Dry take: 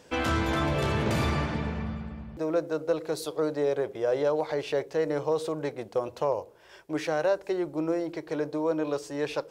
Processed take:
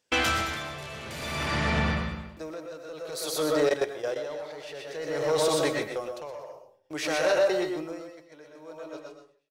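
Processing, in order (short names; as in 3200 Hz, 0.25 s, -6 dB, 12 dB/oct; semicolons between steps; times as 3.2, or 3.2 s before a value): ending faded out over 2.98 s; gate -41 dBFS, range -32 dB; tilt shelf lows -6.5 dB, about 1400 Hz; notch 970 Hz, Q 22; echo 0.124 s -6.5 dB; on a send at -4 dB: reverb RT60 0.45 s, pre-delay 75 ms; 3.69–4.32 on the sum: level quantiser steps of 15 dB; in parallel at +1 dB: limiter -25.5 dBFS, peak gain reduction 9 dB; on the sum: soft clip -18.5 dBFS, distortion -19 dB; dB-linear tremolo 0.54 Hz, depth 18 dB; gain +4 dB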